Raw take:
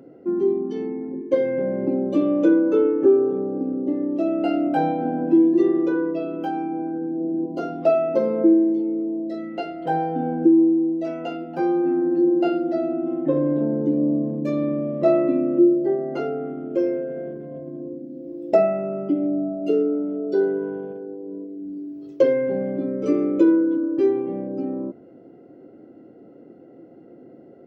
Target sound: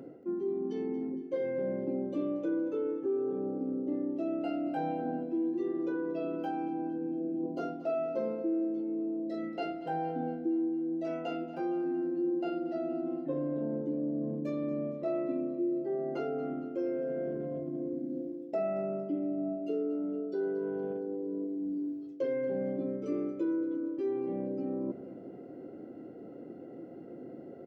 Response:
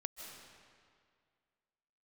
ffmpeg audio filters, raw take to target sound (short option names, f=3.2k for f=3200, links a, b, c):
-af "areverse,acompressor=threshold=-33dB:ratio=4,areverse,aecho=1:1:230|460|690|920|1150:0.158|0.0872|0.0479|0.0264|0.0145"